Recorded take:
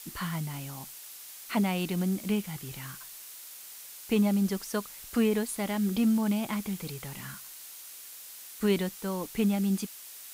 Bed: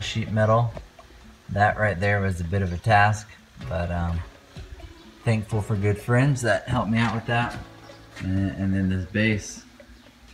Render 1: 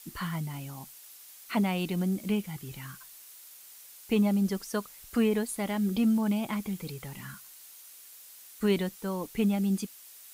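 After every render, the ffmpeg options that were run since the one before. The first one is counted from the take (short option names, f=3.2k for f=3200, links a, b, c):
-af "afftdn=nr=6:nf=-46"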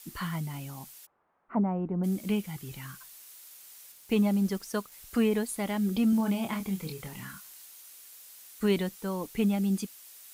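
-filter_complex "[0:a]asplit=3[a][b][c];[a]afade=t=out:st=1.05:d=0.02[d];[b]lowpass=f=1.2k:w=0.5412,lowpass=f=1.2k:w=1.3066,afade=t=in:st=1.05:d=0.02,afade=t=out:st=2.03:d=0.02[e];[c]afade=t=in:st=2.03:d=0.02[f];[d][e][f]amix=inputs=3:normalize=0,asettb=1/sr,asplit=3[g][h][i];[g]atrim=end=3.924[j];[h]atrim=start=3.92:end=4.92,asetpts=PTS-STARTPTS,afade=t=in:d=0.004:c=qsin,afade=t=out:st=0.996:d=0.004:c=qsin,aeval=exprs='sgn(val(0))*max(abs(val(0))-0.00141,0)':c=same[k];[i]atrim=start=4.916[l];[j][k]acrossfade=d=0.004:c1=hsin:c2=qsin[m];[m][l]acrossfade=d=0.004:c1=qsin:c2=hsin,asettb=1/sr,asplit=3[n][o][p];[n]atrim=end=6.104[q];[o]atrim=start=6.1:end=7.65,asetpts=PTS-STARTPTS,afade=t=in:d=0.004:c=qsin,afade=t=out:st=1.546:d=0.004:c=qsin,asplit=2[r][s];[s]adelay=26,volume=-6dB[t];[r][t]amix=inputs=2:normalize=0,atrim=end_sample=68355[u];[p]atrim=start=7.646[v];[q][u]acrossfade=d=0.004:c1=hsin:c2=qsin[w];[w][v]acrossfade=d=0.004:c1=qsin:c2=hsin"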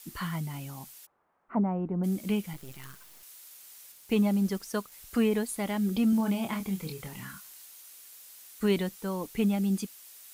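-filter_complex "[0:a]asettb=1/sr,asplit=3[a][b][c];[a]atrim=end=2.534[d];[b]atrim=start=2.53:end=3.23,asetpts=PTS-STARTPTS,afade=t=in:d=0.004:c=qsin,afade=t=out:st=0.696:d=0.004:c=qsin,acrusher=bits=6:dc=4:mix=0:aa=0.000001[e];[c]atrim=start=3.226[f];[d][e]acrossfade=d=0.004:c1=hsin:c2=qsin[g];[g][f]acrossfade=d=0.004:c1=qsin:c2=hsin"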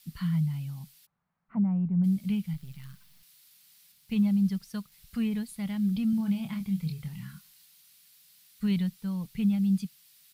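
-af "firequalizer=gain_entry='entry(100,0);entry(160,9);entry(310,-18);entry(760,-14);entry(1300,-11);entry(2100,-7);entry(4400,-3);entry(6600,-12);entry(11000,-9)':delay=0.05:min_phase=1"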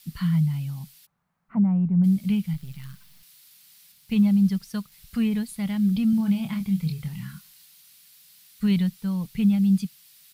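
-af "volume=5.5dB"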